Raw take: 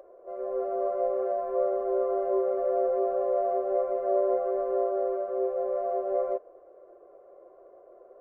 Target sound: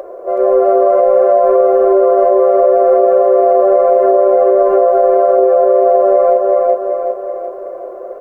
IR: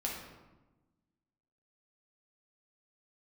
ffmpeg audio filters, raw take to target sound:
-af "lowshelf=f=180:g=-5,aecho=1:1:375|750|1125|1500|1875|2250:0.447|0.237|0.125|0.0665|0.0352|0.0187,alimiter=level_in=24dB:limit=-1dB:release=50:level=0:latency=1,volume=-1.5dB"

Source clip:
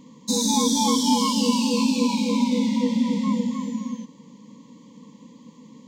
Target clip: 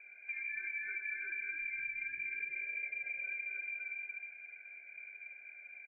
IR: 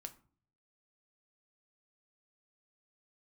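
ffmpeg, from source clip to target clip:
-filter_complex "[0:a]lowpass=f=2.2k:t=q:w=0.5098,lowpass=f=2.2k:t=q:w=0.6013,lowpass=f=2.2k:t=q:w=0.9,lowpass=f=2.2k:t=q:w=2.563,afreqshift=-2600,equalizer=f=210:t=o:w=0.41:g=-15,aecho=1:1:105|236.2:0.316|0.631[a];[1:a]atrim=start_sample=2205[b];[a][b]afir=irnorm=-1:irlink=0,acompressor=threshold=-39dB:ratio=4,volume=-2dB"

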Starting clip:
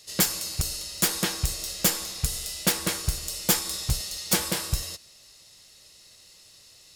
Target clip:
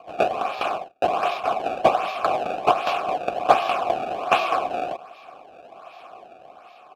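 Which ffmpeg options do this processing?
-filter_complex "[0:a]asplit=3[a][b][c];[a]afade=t=out:st=0.75:d=0.02[d];[b]agate=range=-35dB:threshold=-33dB:ratio=16:detection=peak,afade=t=in:st=0.75:d=0.02,afade=t=out:st=1.49:d=0.02[e];[c]afade=t=in:st=1.49:d=0.02[f];[d][e][f]amix=inputs=3:normalize=0,dynaudnorm=f=190:g=7:m=4.5dB,asplit=2[g][h];[h]alimiter=limit=-14.5dB:level=0:latency=1:release=245,volume=-1.5dB[i];[g][i]amix=inputs=2:normalize=0,aresample=32000,aresample=44100,crystalizer=i=8:c=0,acrusher=samples=24:mix=1:aa=0.000001:lfo=1:lforange=38.4:lforate=1.3,asplit=3[j][k][l];[j]bandpass=f=730:t=q:w=8,volume=0dB[m];[k]bandpass=f=1.09k:t=q:w=8,volume=-6dB[n];[l]bandpass=f=2.44k:t=q:w=8,volume=-9dB[o];[m][n][o]amix=inputs=3:normalize=0,volume=-6dB"

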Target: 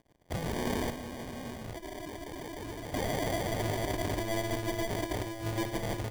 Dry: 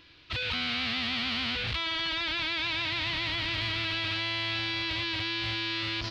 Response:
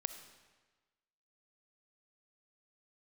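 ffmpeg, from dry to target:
-filter_complex "[0:a]equalizer=f=125:t=o:w=1:g=4,equalizer=f=250:t=o:w=1:g=4,equalizer=f=500:t=o:w=1:g=-11,equalizer=f=1k:t=o:w=1:g=-8,equalizer=f=2k:t=o:w=1:g=8,equalizer=f=4k:t=o:w=1:g=-6,equalizer=f=8k:t=o:w=1:g=-4,asettb=1/sr,asplit=3[a][b][c];[a]atrim=end=0.904[d];[b]atrim=start=0.9:end=2.94,asetpts=PTS-STARTPTS,afade=t=in:d=0.004:c=qsin,afade=t=out:st=2.036:d=0.004:c=qsin,acrossover=split=130|920[e][f][g];[e]acompressor=threshold=-47dB:ratio=4[h];[f]acompressor=threshold=-43dB:ratio=4[i];[g]acompressor=threshold=-40dB:ratio=4[j];[h][i][j]amix=inputs=3:normalize=0[k];[c]atrim=start=2.936[l];[d][k]acrossfade=d=0.004:c1=hsin:c2=qsin[m];[m][l]acrossfade=d=0.004:c1=qsin:c2=hsin,acrusher=samples=33:mix=1:aa=0.000001,aeval=exprs='sgn(val(0))*max(abs(val(0))-0.00168,0)':c=same[n];[1:a]atrim=start_sample=2205,atrim=end_sample=3087[o];[n][o]afir=irnorm=-1:irlink=0"

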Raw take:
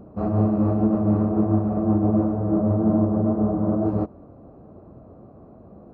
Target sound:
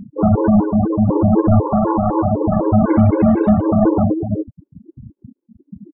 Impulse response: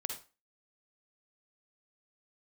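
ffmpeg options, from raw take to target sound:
-filter_complex "[0:a]aecho=1:1:67|90|373:0.119|0.282|0.299,asplit=2[a][b];[1:a]atrim=start_sample=2205,lowshelf=f=330:g=3.5[c];[b][c]afir=irnorm=-1:irlink=0,volume=-15.5dB[d];[a][d]amix=inputs=2:normalize=0,asoftclip=type=hard:threshold=-19dB,asettb=1/sr,asplit=3[e][f][g];[e]atrim=end=0.644[h];[f]atrim=start=0.64:end=1.09,asetpts=PTS-STARTPTS,afade=t=in:d=0.004:c=qsin,afade=t=out:st=0.446:d=0.004:c=qsin,acrossover=split=190|840[i][j][k];[i]acompressor=threshold=-28dB:ratio=4[l];[j]acompressor=threshold=-31dB:ratio=4[m];[k]acompressor=threshold=-37dB:ratio=4[n];[l][m][n]amix=inputs=3:normalize=0[o];[g]atrim=start=1.086[p];[h][o]acrossfade=d=0.004:c1=hsin:c2=qsin[q];[q][p]acrossfade=d=0.004:c1=qsin:c2=hsin,asettb=1/sr,asplit=3[r][s][t];[r]atrim=end=1.624[u];[s]atrim=start=1.62:end=2.25,asetpts=PTS-STARTPTS,afade=t=in:d=0.004:c=qsin,afade=t=out:st=0.626:d=0.004:c=qsin,equalizer=f=100:t=o:w=0.67:g=-4,equalizer=f=250:t=o:w=0.67:g=-8,equalizer=f=1k:t=o:w=0.67:g=8[v];[t]atrim=start=2.246[w];[u][v]acrossfade=d=0.004:c1=hsin:c2=qsin[x];[x][w]acrossfade=d=0.004:c1=qsin:c2=hsin,asettb=1/sr,asplit=3[y][z][aa];[y]atrim=end=2.884[ab];[z]atrim=start=2.88:end=3.62,asetpts=PTS-STARTPTS,afade=t=in:d=0.004:c=qsin,afade=t=out:st=0.736:d=0.004:c=qsin,acontrast=70[ac];[aa]atrim=start=3.616[ad];[ab][ac]acrossfade=d=0.004:c1=hsin:c2=qsin[ae];[ae][ad]acrossfade=d=0.004:c1=qsin:c2=hsin,acrusher=bits=3:mode=log:mix=0:aa=0.000001,afftfilt=real='re*gte(hypot(re,im),0.0501)':imag='im*gte(hypot(re,im),0.0501)':win_size=1024:overlap=0.75,alimiter=level_in=19.5dB:limit=-1dB:release=50:level=0:latency=1,afftfilt=real='re*gt(sin(2*PI*4*pts/sr)*(1-2*mod(floor(b*sr/1024/280),2)),0)':imag='im*gt(sin(2*PI*4*pts/sr)*(1-2*mod(floor(b*sr/1024/280),2)),0)':win_size=1024:overlap=0.75,volume=-5.5dB"

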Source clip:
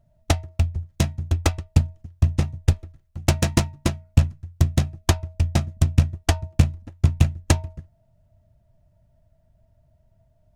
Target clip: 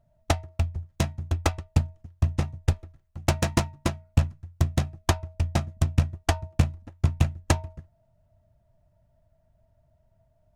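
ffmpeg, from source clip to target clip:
-af "equalizer=f=990:t=o:w=2.1:g=5.5,volume=-5dB"

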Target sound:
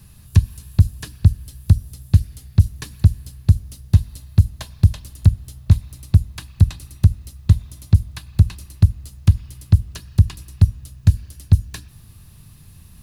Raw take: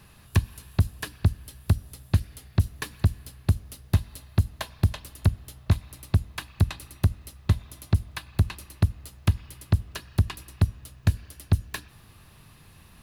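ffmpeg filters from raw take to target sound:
-filter_complex "[0:a]acrossover=split=8500[a][b];[b]acompressor=threshold=-51dB:ratio=4:attack=1:release=60[c];[a][c]amix=inputs=2:normalize=0,bass=f=250:g=14,treble=f=4k:g=12,volume=-4.5dB"

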